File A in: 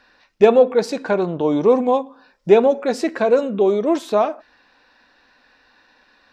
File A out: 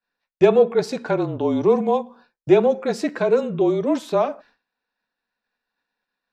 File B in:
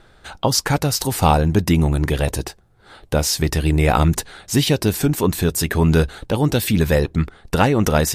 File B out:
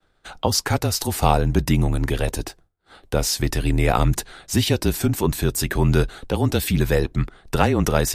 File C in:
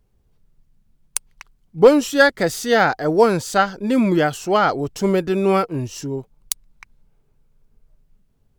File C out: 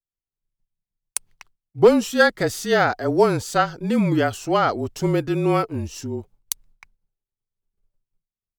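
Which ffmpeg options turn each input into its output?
-af "agate=range=-33dB:threshold=-41dB:ratio=3:detection=peak,afreqshift=-31,volume=-2.5dB"

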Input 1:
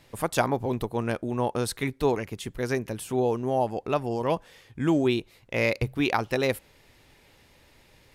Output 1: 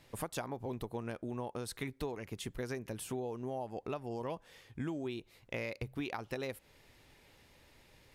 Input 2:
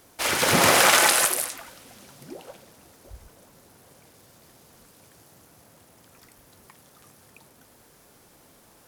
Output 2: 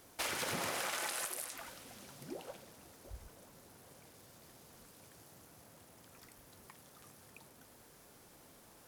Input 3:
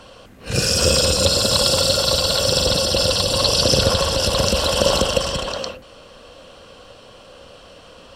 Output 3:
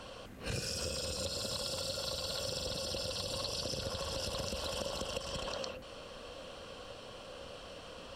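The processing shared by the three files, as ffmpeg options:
-af "acompressor=threshold=-30dB:ratio=12,volume=-5dB"

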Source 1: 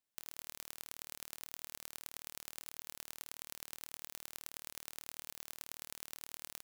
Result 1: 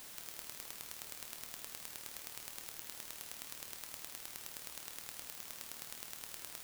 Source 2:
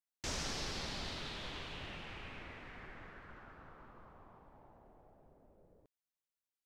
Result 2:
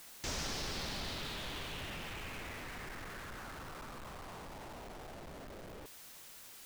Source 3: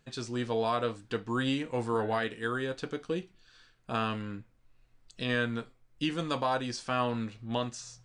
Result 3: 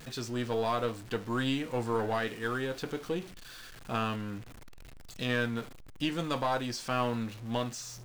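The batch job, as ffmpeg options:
-af "aeval=exprs='val(0)+0.5*0.00794*sgn(val(0))':c=same,aeval=exprs='0.178*(cos(1*acos(clip(val(0)/0.178,-1,1)))-cos(1*PI/2))+0.0141*(cos(4*acos(clip(val(0)/0.178,-1,1)))-cos(4*PI/2))':c=same,volume=-1.5dB"

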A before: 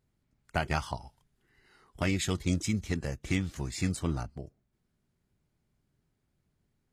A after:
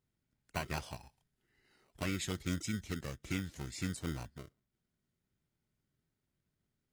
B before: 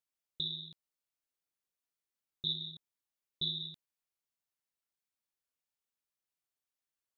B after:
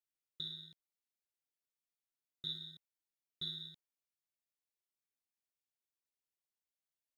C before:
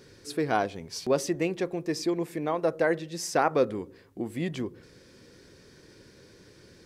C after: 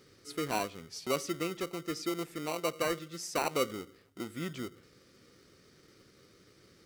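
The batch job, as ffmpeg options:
-filter_complex "[0:a]lowshelf=f=65:g=-6.5,acrossover=split=1300[a][b];[a]acrusher=samples=26:mix=1:aa=0.000001[c];[c][b]amix=inputs=2:normalize=0,volume=-6.5dB"

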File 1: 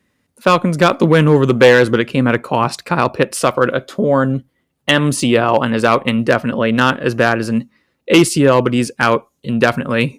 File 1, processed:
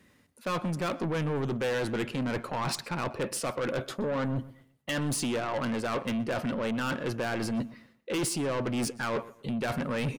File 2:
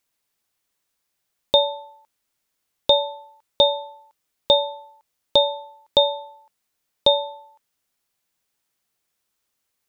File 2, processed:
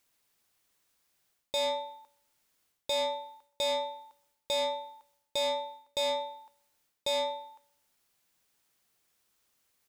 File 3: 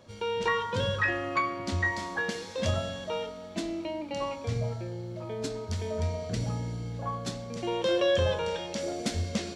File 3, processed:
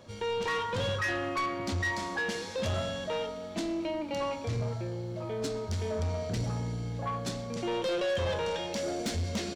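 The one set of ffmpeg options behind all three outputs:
-filter_complex "[0:a]areverse,acompressor=threshold=-23dB:ratio=16,areverse,asoftclip=type=tanh:threshold=-29dB,asplit=2[a][b];[b]adelay=123,lowpass=f=3.5k:p=1,volume=-18dB,asplit=2[c][d];[d]adelay=123,lowpass=f=3.5k:p=1,volume=0.3,asplit=2[e][f];[f]adelay=123,lowpass=f=3.5k:p=1,volume=0.3[g];[a][c][e][g]amix=inputs=4:normalize=0,volume=2.5dB"

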